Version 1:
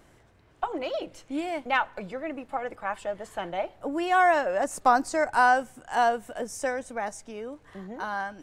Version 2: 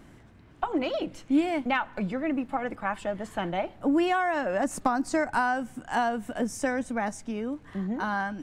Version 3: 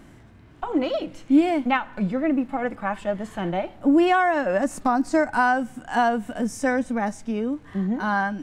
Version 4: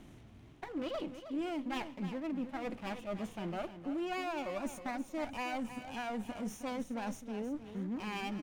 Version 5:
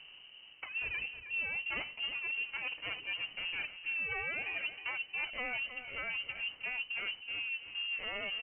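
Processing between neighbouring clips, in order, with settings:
tone controls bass -9 dB, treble -4 dB; compressor 6:1, threshold -25 dBFS, peak gain reduction 10.5 dB; resonant low shelf 330 Hz +11 dB, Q 1.5; gain +3.5 dB
harmonic-percussive split harmonic +9 dB; gain -2.5 dB
minimum comb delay 0.31 ms; reverse; compressor, threshold -30 dBFS, peak gain reduction 16 dB; reverse; feedback echo 0.316 s, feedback 28%, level -11 dB; gain -6 dB
inverted band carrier 3000 Hz

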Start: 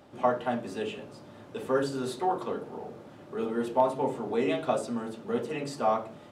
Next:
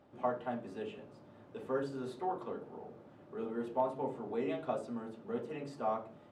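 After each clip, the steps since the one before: high shelf 3300 Hz -11.5 dB; gain -8 dB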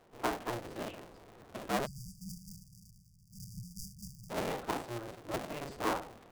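cycle switcher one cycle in 2, inverted; vocal rider within 3 dB 2 s; spectral delete 1.86–4.3, 200–4600 Hz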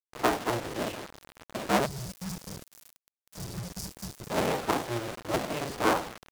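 HPF 47 Hz 12 dB/oct; requantised 8-bit, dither none; Doppler distortion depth 0.21 ms; gain +8 dB

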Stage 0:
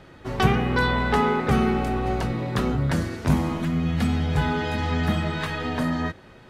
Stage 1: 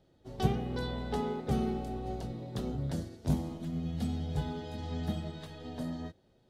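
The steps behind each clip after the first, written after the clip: band shelf 1600 Hz -11 dB; upward expander 1.5:1, over -36 dBFS; gain -7.5 dB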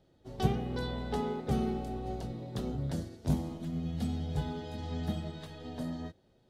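nothing audible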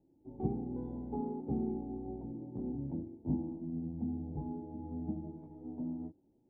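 vocal tract filter u; gain +5.5 dB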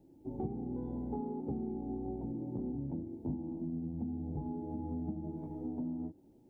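compressor 5:1, threshold -45 dBFS, peak gain reduction 16 dB; gain +9 dB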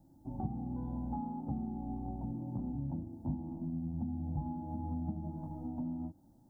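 fixed phaser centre 1000 Hz, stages 4; gain +4.5 dB

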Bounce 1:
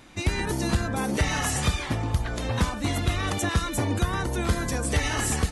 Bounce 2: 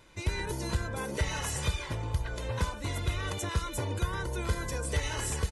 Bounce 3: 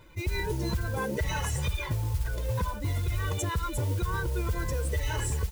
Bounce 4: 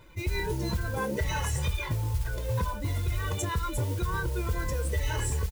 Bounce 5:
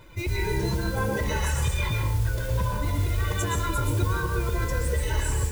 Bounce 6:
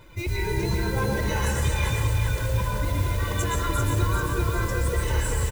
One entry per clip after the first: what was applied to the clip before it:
comb 2 ms, depth 56%; gain -8 dB
spectral contrast raised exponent 1.6; limiter -26 dBFS, peak gain reduction 7 dB; modulation noise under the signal 19 dB; gain +5 dB
doubler 25 ms -12 dB
limiter -24.5 dBFS, peak gain reduction 6 dB; plate-style reverb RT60 0.56 s, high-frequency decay 0.8×, pre-delay 0.105 s, DRR 1 dB; gain +4 dB
feedback echo 0.391 s, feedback 52%, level -5 dB

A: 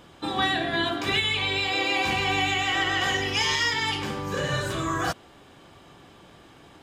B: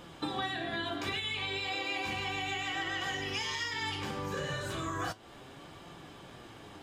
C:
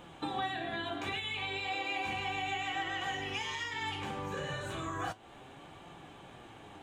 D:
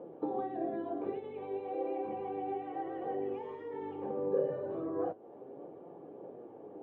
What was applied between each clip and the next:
compressor 6:1, threshold -34 dBFS, peak gain reduction 13.5 dB; flange 0.34 Hz, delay 5.6 ms, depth 7.4 ms, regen +67%; gain +5 dB
thirty-one-band EQ 800 Hz +6 dB, 2500 Hz +3 dB, 5000 Hz -11 dB, 12500 Hz -9 dB; gain -2.5 dB
HPF 270 Hz 12 dB/oct; phaser 1.6 Hz, delay 1.2 ms, feedback 21%; synth low-pass 480 Hz, resonance Q 3.4; gain +2 dB

